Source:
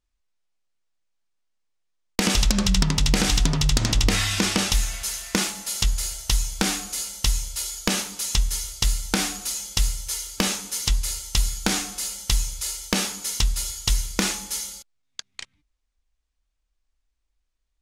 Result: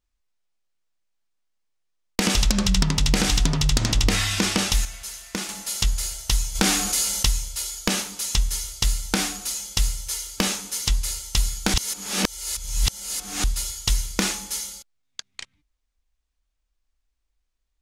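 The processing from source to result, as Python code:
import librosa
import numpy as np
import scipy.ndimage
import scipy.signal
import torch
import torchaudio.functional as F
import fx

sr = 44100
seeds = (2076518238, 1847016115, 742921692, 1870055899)

y = fx.env_flatten(x, sr, amount_pct=50, at=(6.54, 7.26), fade=0.02)
y = fx.edit(y, sr, fx.clip_gain(start_s=4.85, length_s=0.64, db=-6.5),
    fx.reverse_span(start_s=11.74, length_s=1.7), tone=tone)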